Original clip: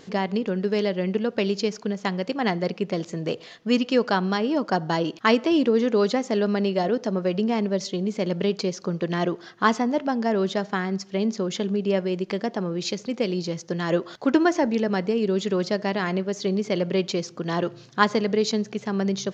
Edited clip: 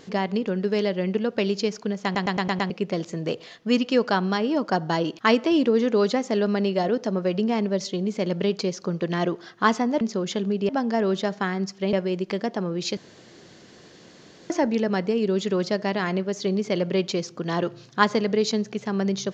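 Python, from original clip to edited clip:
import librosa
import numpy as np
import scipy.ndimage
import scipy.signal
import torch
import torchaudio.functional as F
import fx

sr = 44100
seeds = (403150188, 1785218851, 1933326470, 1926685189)

y = fx.edit(x, sr, fx.stutter_over(start_s=2.04, slice_s=0.11, count=6),
    fx.move(start_s=11.25, length_s=0.68, to_s=10.01),
    fx.room_tone_fill(start_s=12.97, length_s=1.53), tone=tone)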